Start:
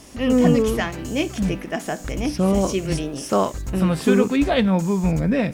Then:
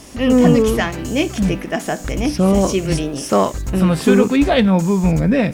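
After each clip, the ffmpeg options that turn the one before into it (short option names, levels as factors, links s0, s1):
-af "acontrast=28"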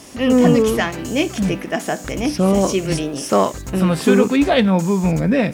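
-af "highpass=f=140:p=1"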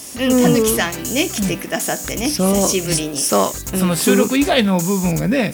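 -af "aemphasis=mode=production:type=75kf,volume=0.891"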